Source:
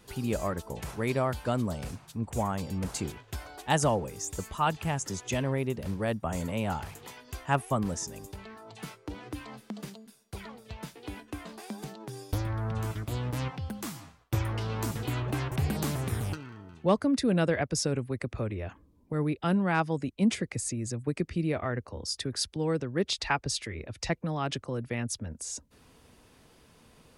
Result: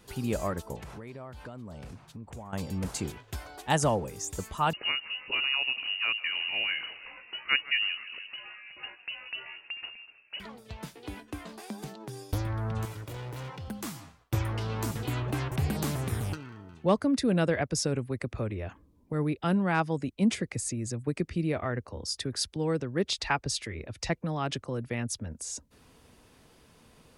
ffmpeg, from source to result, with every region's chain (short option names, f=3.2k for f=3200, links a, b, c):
-filter_complex "[0:a]asettb=1/sr,asplit=3[a][b][c];[a]atrim=end=0.764[d];[b]atrim=start=0.76:end=2.53,asetpts=PTS-STARTPTS,afade=t=in:d=0.004:c=qsin,afade=t=out:st=1.766:d=0.004:c=qsin,lowpass=f=3.6k:p=1,acompressor=threshold=-39dB:ratio=8:attack=3.2:release=140:knee=1:detection=peak[e];[c]atrim=start=2.526[f];[d][e]acrossfade=d=0.004:c1=hsin:c2=qsin[g];[g][f]acrossfade=d=0.004:c1=qsin:c2=hsin,asettb=1/sr,asplit=3[h][i][j];[h]atrim=end=4.734[k];[i]atrim=start=4.73:end=10.4,asetpts=PTS-STARTPTS,afade=t=in:d=0.004:c=qsin,afade=t=out:st=5.666:d=0.004:c=qsin,asplit=7[l][m][n][o][p][q][r];[m]adelay=158,afreqshift=60,volume=-18dB[s];[n]adelay=316,afreqshift=120,volume=-21.7dB[t];[o]adelay=474,afreqshift=180,volume=-25.5dB[u];[p]adelay=632,afreqshift=240,volume=-29.2dB[v];[q]adelay=790,afreqshift=300,volume=-33dB[w];[r]adelay=948,afreqshift=360,volume=-36.7dB[x];[l][s][t][u][v][w][x]amix=inputs=7:normalize=0,atrim=end_sample=250047,lowpass=f=2.6k:t=q:w=0.5098,lowpass=f=2.6k:t=q:w=0.6013,lowpass=f=2.6k:t=q:w=0.9,lowpass=f=2.6k:t=q:w=2.563,afreqshift=-3000[y];[j]atrim=start=10.396[z];[k][y]acrossfade=d=0.004:c1=hsin:c2=qsin[aa];[aa][z]acrossfade=d=0.004:c1=qsin:c2=hsin,asettb=1/sr,asplit=3[ab][ac][ad];[ab]atrim=end=12.854[ae];[ac]atrim=start=12.85:end=13.68,asetpts=PTS-STARTPTS,afade=t=in:d=0.004:c=qsin,afade=t=out:st=0.826:d=0.004:c=qsin,highpass=120,aecho=1:1:2.1:0.55,atrim=end_sample=36603,asoftclip=type=hard:threshold=-36.5dB[af];[ad]atrim=start=13.676[ag];[ae][af]acrossfade=d=0.004:c1=hsin:c2=qsin[ah];[ah][ag]acrossfade=d=0.004:c1=qsin:c2=hsin"